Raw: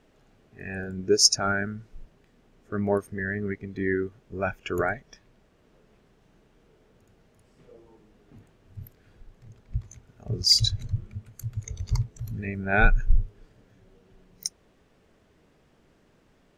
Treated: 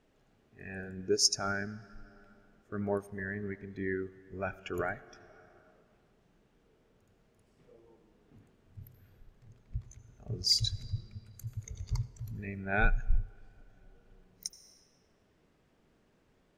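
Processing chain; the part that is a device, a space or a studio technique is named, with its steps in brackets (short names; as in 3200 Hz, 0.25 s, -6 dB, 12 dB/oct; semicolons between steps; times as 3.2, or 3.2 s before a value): compressed reverb return (on a send at -7 dB: reverb RT60 1.9 s, pre-delay 73 ms + compressor 5:1, threshold -38 dBFS, peak gain reduction 21 dB); on the sum: gain -8 dB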